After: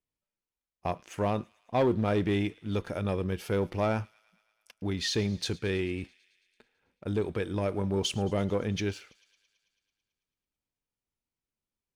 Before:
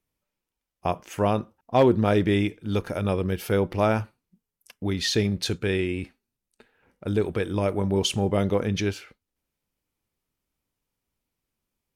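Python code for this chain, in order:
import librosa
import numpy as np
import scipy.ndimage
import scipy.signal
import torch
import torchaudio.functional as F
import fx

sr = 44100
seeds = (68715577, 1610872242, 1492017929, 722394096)

y = scipy.signal.sosfilt(scipy.signal.butter(2, 10000.0, 'lowpass', fs=sr, output='sos'), x)
y = fx.leveller(y, sr, passes=1)
y = fx.echo_wet_highpass(y, sr, ms=110, feedback_pct=71, hz=2200.0, wet_db=-21.0)
y = y * librosa.db_to_amplitude(-8.5)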